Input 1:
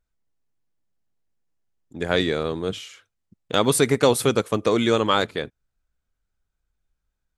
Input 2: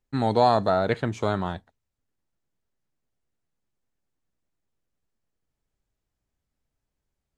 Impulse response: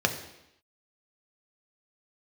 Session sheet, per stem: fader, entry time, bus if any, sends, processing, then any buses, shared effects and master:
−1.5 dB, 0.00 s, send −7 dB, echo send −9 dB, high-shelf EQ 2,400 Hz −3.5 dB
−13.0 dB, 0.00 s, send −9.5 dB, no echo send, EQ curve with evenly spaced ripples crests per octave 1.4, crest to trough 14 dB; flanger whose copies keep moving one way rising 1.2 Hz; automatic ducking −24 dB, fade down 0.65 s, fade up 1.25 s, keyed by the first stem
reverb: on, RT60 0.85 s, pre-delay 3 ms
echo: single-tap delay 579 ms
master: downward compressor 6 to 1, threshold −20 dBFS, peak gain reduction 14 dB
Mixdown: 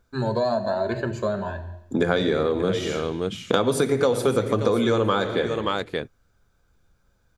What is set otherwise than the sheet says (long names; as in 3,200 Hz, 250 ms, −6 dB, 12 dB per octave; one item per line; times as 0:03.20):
stem 1 −1.5 dB → +10.5 dB
stem 2 −13.0 dB → −1.5 dB